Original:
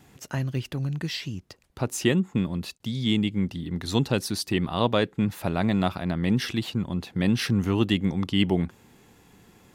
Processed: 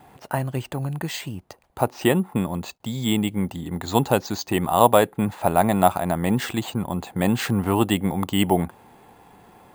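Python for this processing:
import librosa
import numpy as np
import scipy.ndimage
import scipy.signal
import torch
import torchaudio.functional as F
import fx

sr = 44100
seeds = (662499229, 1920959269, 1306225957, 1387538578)

y = fx.peak_eq(x, sr, hz=800.0, db=14.0, octaves=1.3)
y = np.repeat(scipy.signal.resample_poly(y, 1, 4), 4)[:len(y)]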